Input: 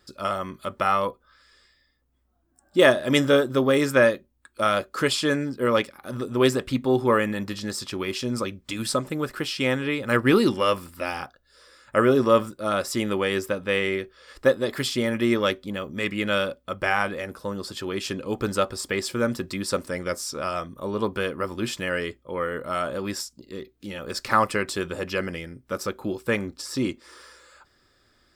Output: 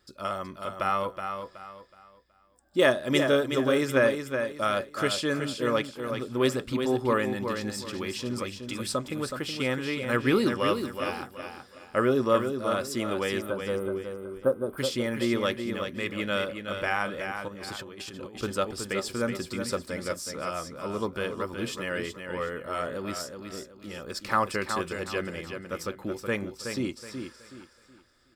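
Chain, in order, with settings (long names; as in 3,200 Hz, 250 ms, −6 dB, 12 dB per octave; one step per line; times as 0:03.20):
0:13.41–0:14.78: gain on a spectral selection 1,600–8,500 Hz −27 dB
repeating echo 372 ms, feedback 31%, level −7 dB
0:17.48–0:18.43: compressor whose output falls as the input rises −36 dBFS, ratio −1
level −5 dB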